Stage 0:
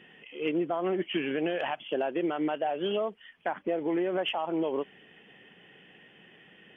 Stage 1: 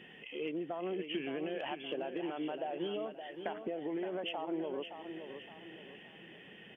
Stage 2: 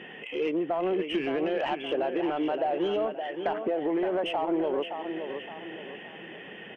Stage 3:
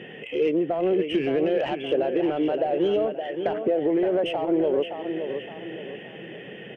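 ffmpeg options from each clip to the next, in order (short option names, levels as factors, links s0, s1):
-filter_complex "[0:a]equalizer=f=1300:w=1.4:g=-4,acompressor=threshold=0.0112:ratio=4,asplit=2[s0][s1];[s1]aecho=0:1:568|1136|1704|2272:0.376|0.15|0.0601|0.0241[s2];[s0][s2]amix=inputs=2:normalize=0,volume=1.19"
-filter_complex "[0:a]asplit=2[s0][s1];[s1]highpass=f=720:p=1,volume=5.01,asoftclip=type=tanh:threshold=0.0631[s2];[s0][s2]amix=inputs=2:normalize=0,lowpass=f=1000:p=1,volume=0.501,volume=2.66"
-af "equalizer=f=125:t=o:w=1:g=9,equalizer=f=500:t=o:w=1:g=6,equalizer=f=1000:t=o:w=1:g=-8,volume=1.26"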